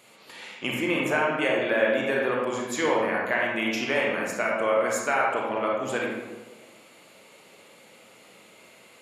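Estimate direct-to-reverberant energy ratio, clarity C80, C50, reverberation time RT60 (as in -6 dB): -3.0 dB, 3.0 dB, 0.0 dB, 1.2 s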